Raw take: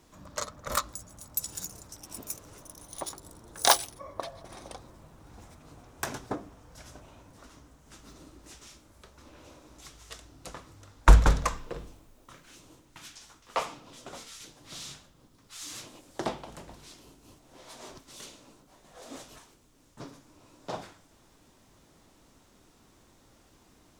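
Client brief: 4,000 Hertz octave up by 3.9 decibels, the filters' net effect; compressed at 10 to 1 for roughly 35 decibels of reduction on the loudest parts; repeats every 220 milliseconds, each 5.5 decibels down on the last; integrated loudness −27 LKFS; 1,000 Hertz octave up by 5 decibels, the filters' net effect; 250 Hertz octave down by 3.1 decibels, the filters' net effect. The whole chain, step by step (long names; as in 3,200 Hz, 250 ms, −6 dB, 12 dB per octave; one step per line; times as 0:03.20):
parametric band 250 Hz −5 dB
parametric band 1,000 Hz +6 dB
parametric band 4,000 Hz +4.5 dB
downward compressor 10 to 1, threshold −46 dBFS
repeating echo 220 ms, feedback 53%, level −5.5 dB
level +23 dB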